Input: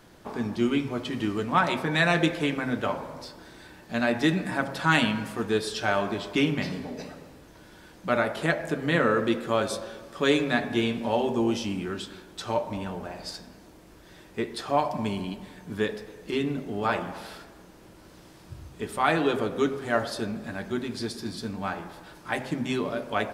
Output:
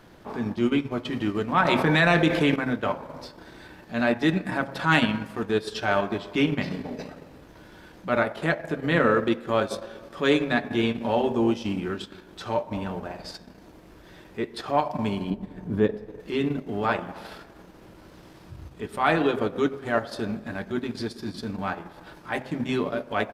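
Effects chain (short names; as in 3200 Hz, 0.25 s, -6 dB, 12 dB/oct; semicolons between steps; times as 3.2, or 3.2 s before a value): transient shaper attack -5 dB, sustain -9 dB; 15.3–16.2 tilt shelf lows +7.5 dB; downsampling 32000 Hz; bell 8700 Hz -7.5 dB 1.6 oct; 1.65–2.56 fast leveller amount 70%; gain +3.5 dB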